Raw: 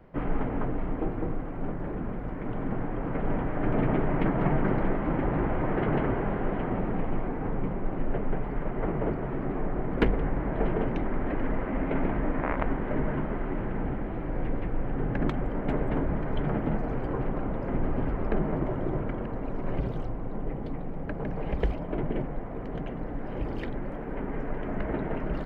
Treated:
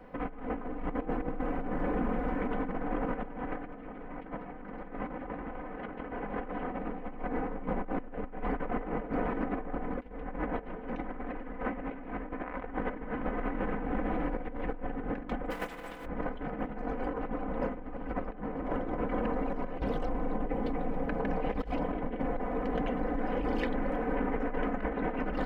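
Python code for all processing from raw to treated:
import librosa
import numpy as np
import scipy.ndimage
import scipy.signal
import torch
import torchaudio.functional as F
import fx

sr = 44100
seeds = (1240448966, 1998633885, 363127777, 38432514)

y = fx.spec_flatten(x, sr, power=0.52, at=(15.5, 16.04), fade=0.02)
y = fx.comb(y, sr, ms=6.0, depth=0.44, at=(15.5, 16.04), fade=0.02)
y = fx.bass_treble(y, sr, bass_db=-7, treble_db=-1)
y = y + 0.72 * np.pad(y, (int(4.0 * sr / 1000.0), 0))[:len(y)]
y = fx.over_compress(y, sr, threshold_db=-33.0, ratio=-0.5)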